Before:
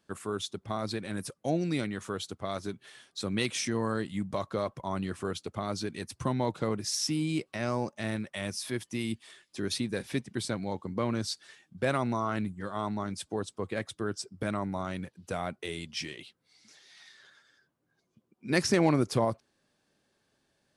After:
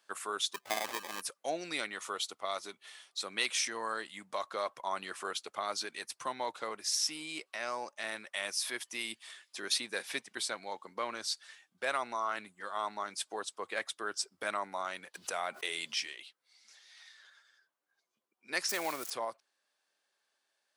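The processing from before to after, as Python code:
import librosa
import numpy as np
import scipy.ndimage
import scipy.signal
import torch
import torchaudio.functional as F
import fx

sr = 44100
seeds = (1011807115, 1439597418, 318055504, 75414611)

y = fx.sample_hold(x, sr, seeds[0], rate_hz=1400.0, jitter_pct=0, at=(0.53, 1.2), fade=0.02)
y = fx.notch(y, sr, hz=1600.0, q=6.7, at=(1.96, 3.22))
y = fx.env_flatten(y, sr, amount_pct=70, at=(15.14, 16.0))
y = fx.crossing_spikes(y, sr, level_db=-26.5, at=(18.69, 19.1))
y = scipy.signal.sosfilt(scipy.signal.butter(2, 800.0, 'highpass', fs=sr, output='sos'), y)
y = fx.rider(y, sr, range_db=10, speed_s=2.0)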